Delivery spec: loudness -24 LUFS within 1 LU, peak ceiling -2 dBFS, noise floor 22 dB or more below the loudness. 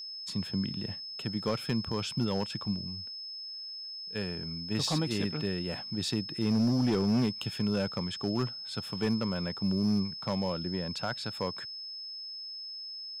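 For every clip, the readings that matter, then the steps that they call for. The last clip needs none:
clipped 1.1%; flat tops at -22.0 dBFS; steady tone 5200 Hz; tone level -39 dBFS; loudness -32.5 LUFS; peak -22.0 dBFS; loudness target -24.0 LUFS
-> clip repair -22 dBFS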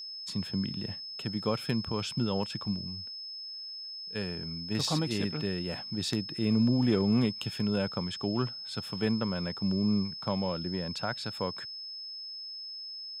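clipped 0.0%; steady tone 5200 Hz; tone level -39 dBFS
-> notch 5200 Hz, Q 30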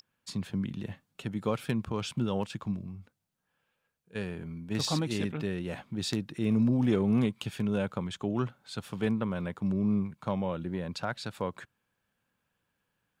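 steady tone none; loudness -32.0 LUFS; peak -13.0 dBFS; loudness target -24.0 LUFS
-> gain +8 dB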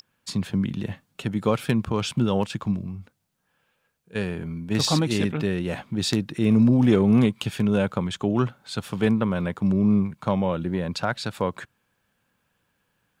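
loudness -24.0 LUFS; peak -5.0 dBFS; noise floor -73 dBFS

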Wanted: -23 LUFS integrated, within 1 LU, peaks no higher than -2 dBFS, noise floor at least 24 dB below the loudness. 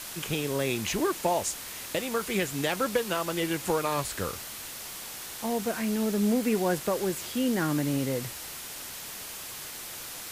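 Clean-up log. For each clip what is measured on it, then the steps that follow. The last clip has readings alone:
noise floor -40 dBFS; noise floor target -54 dBFS; loudness -30.0 LUFS; peak -13.0 dBFS; loudness target -23.0 LUFS
-> denoiser 14 dB, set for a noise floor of -40 dBFS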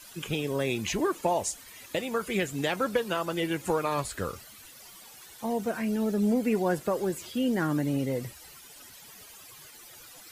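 noise floor -50 dBFS; noise floor target -54 dBFS
-> denoiser 6 dB, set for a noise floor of -50 dBFS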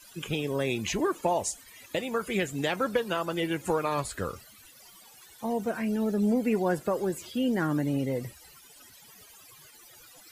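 noise floor -54 dBFS; loudness -29.5 LUFS; peak -13.5 dBFS; loudness target -23.0 LUFS
-> gain +6.5 dB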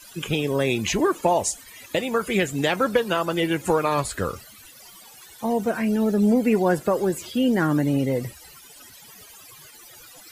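loudness -23.0 LUFS; peak -7.0 dBFS; noise floor -47 dBFS

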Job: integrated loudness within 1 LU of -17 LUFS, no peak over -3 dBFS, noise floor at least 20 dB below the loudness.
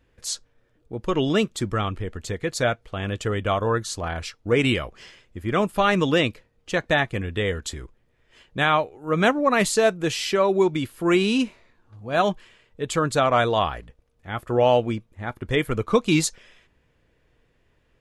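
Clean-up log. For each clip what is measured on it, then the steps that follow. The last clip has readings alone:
loudness -23.5 LUFS; peak -6.5 dBFS; loudness target -17.0 LUFS
-> gain +6.5 dB; limiter -3 dBFS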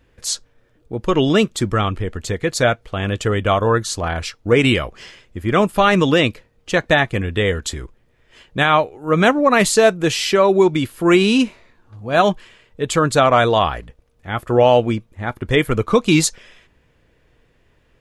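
loudness -17.5 LUFS; peak -3.0 dBFS; noise floor -59 dBFS

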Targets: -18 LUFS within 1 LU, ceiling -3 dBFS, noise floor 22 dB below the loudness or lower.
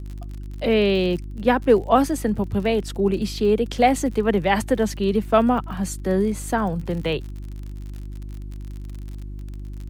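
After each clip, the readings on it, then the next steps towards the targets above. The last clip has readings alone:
ticks 49/s; hum 50 Hz; harmonics up to 350 Hz; hum level -30 dBFS; loudness -21.5 LUFS; peak -3.5 dBFS; loudness target -18.0 LUFS
-> de-click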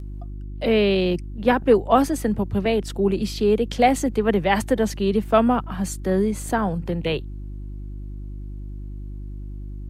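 ticks 0.10/s; hum 50 Hz; harmonics up to 300 Hz; hum level -31 dBFS
-> de-hum 50 Hz, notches 6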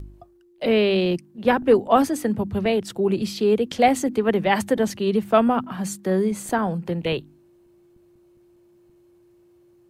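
hum none; loudness -21.5 LUFS; peak -4.0 dBFS; loudness target -18.0 LUFS
-> gain +3.5 dB; limiter -3 dBFS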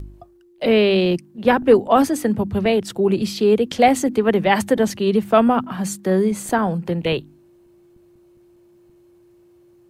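loudness -18.5 LUFS; peak -3.0 dBFS; noise floor -53 dBFS

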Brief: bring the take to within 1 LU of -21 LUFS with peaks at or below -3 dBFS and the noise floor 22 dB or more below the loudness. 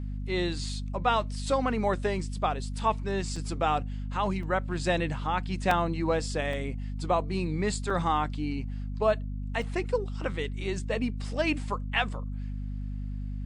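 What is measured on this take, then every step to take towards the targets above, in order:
dropouts 6; longest dropout 3.1 ms; hum 50 Hz; harmonics up to 250 Hz; hum level -31 dBFS; loudness -30.0 LUFS; peak -9.5 dBFS; loudness target -21.0 LUFS
-> interpolate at 3.36/4.43/5.71/6.53/7.9/9.62, 3.1 ms; de-hum 50 Hz, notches 5; gain +9 dB; limiter -3 dBFS

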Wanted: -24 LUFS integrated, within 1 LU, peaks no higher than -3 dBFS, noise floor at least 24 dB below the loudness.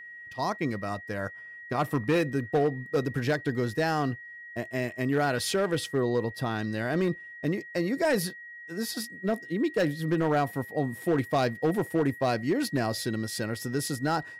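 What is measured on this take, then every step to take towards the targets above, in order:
clipped 1.0%; flat tops at -19.0 dBFS; steady tone 1900 Hz; tone level -42 dBFS; loudness -29.0 LUFS; peak -19.0 dBFS; loudness target -24.0 LUFS
-> clip repair -19 dBFS; notch 1900 Hz, Q 30; gain +5 dB

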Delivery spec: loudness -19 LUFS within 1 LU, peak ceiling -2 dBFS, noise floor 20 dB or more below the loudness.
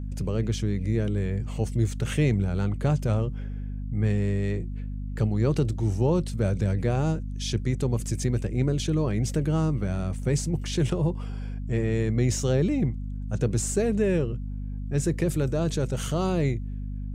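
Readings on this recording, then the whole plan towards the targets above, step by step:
hum 50 Hz; harmonics up to 250 Hz; hum level -30 dBFS; loudness -27.0 LUFS; peak -11.0 dBFS; loudness target -19.0 LUFS
-> de-hum 50 Hz, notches 5; gain +8 dB

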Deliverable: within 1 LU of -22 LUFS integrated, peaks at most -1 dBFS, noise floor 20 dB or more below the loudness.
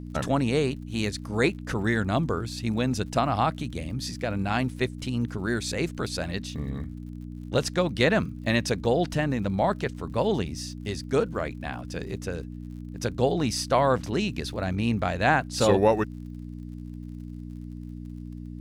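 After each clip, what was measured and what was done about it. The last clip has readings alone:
ticks 59/s; hum 60 Hz; harmonics up to 300 Hz; hum level -35 dBFS; loudness -27.0 LUFS; peak -8.0 dBFS; loudness target -22.0 LUFS
-> de-click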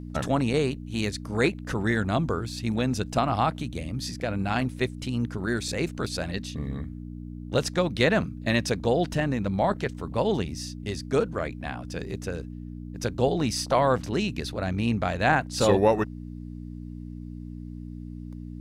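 ticks 0.054/s; hum 60 Hz; harmonics up to 300 Hz; hum level -35 dBFS
-> de-hum 60 Hz, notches 5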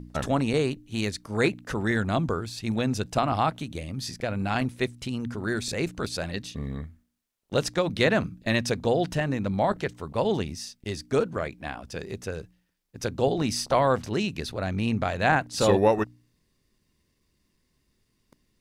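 hum none; loudness -27.5 LUFS; peak -8.5 dBFS; loudness target -22.0 LUFS
-> gain +5.5 dB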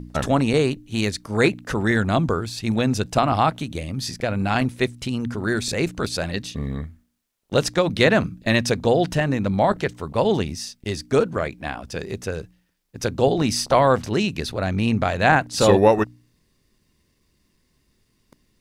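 loudness -22.0 LUFS; peak -3.0 dBFS; noise floor -67 dBFS

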